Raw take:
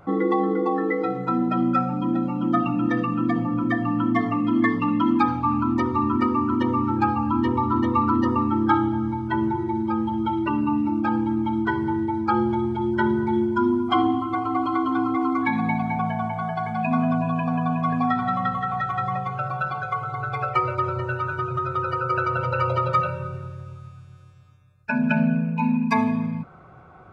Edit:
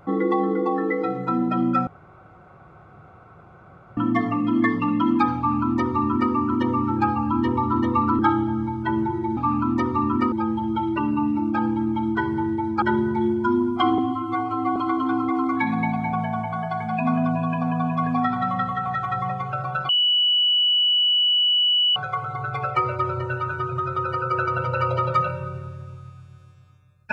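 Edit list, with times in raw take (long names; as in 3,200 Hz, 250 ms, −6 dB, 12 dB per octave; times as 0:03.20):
0:01.87–0:03.97: fill with room tone
0:05.37–0:06.32: duplicate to 0:09.82
0:08.19–0:08.64: remove
0:12.32–0:12.94: remove
0:14.10–0:14.62: time-stretch 1.5×
0:19.75: insert tone 2,950 Hz −16 dBFS 2.07 s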